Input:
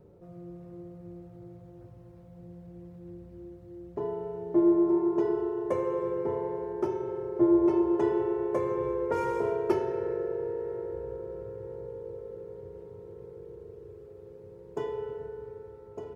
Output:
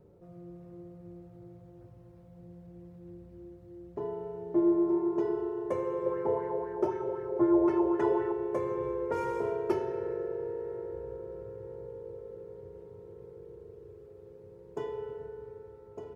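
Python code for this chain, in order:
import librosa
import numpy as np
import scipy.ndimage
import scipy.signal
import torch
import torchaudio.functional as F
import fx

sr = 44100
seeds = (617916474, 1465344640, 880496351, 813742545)

y = fx.bell_lfo(x, sr, hz=3.9, low_hz=530.0, high_hz=1900.0, db=11, at=(6.06, 8.32))
y = y * librosa.db_to_amplitude(-3.0)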